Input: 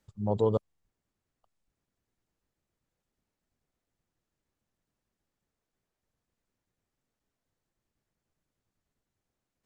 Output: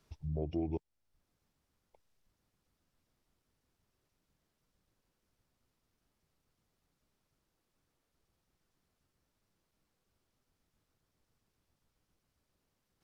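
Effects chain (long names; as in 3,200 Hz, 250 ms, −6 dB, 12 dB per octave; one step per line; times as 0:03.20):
downward compressor 2.5 to 1, threshold −44 dBFS, peak gain reduction 15 dB
wrong playback speed 45 rpm record played at 33 rpm
level +4.5 dB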